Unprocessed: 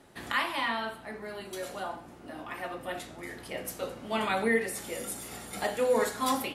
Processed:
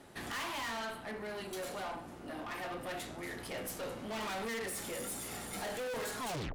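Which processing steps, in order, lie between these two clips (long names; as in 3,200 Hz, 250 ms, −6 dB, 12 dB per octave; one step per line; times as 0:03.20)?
turntable brake at the end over 0.32 s
tube saturation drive 40 dB, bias 0.45
level +3 dB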